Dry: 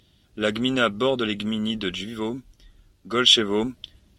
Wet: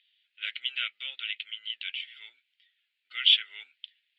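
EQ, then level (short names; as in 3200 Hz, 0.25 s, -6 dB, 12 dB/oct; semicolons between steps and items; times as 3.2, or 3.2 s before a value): ladder high-pass 1800 Hz, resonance 35%; air absorption 200 m; fixed phaser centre 2600 Hz, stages 4; +5.5 dB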